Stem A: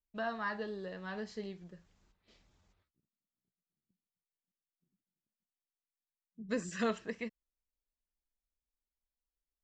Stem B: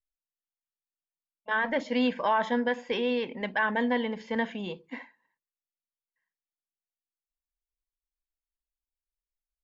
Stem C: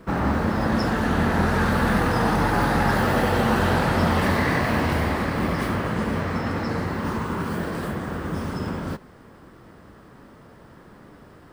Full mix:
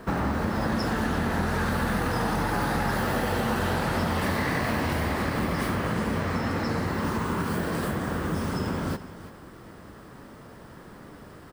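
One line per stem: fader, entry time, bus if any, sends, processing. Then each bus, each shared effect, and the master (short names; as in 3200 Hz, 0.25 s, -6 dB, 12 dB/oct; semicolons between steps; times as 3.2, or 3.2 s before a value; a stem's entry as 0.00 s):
+0.5 dB, 0.00 s, no send, no echo send, time blur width 1.15 s
off
+1.5 dB, 0.00 s, no send, echo send -16.5 dB, high shelf 5200 Hz +6 dB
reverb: off
echo: echo 0.336 s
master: compressor 4:1, threshold -24 dBFS, peak gain reduction 8.5 dB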